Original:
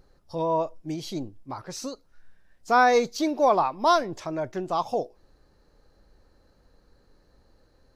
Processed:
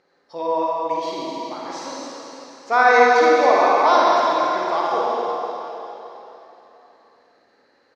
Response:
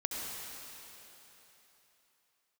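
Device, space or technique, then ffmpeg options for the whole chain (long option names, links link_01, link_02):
station announcement: -filter_complex "[0:a]highpass=410,lowpass=4800,equalizer=frequency=2000:width_type=o:width=0.45:gain=6.5,aecho=1:1:52.48|265.3:0.631|0.251[link_01];[1:a]atrim=start_sample=2205[link_02];[link_01][link_02]afir=irnorm=-1:irlink=0,volume=2.5dB"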